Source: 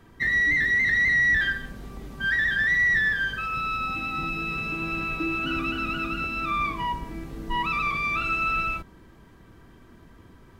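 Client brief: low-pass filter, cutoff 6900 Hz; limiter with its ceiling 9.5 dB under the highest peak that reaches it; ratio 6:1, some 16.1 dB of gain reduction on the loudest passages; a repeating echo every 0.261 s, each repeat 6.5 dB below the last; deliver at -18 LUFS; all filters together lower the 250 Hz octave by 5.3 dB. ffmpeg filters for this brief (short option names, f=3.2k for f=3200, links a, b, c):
-af "lowpass=6.9k,equalizer=f=250:t=o:g=-8,acompressor=threshold=-38dB:ratio=6,alimiter=level_in=14.5dB:limit=-24dB:level=0:latency=1,volume=-14.5dB,aecho=1:1:261|522|783|1044|1305|1566:0.473|0.222|0.105|0.0491|0.0231|0.0109,volume=24.5dB"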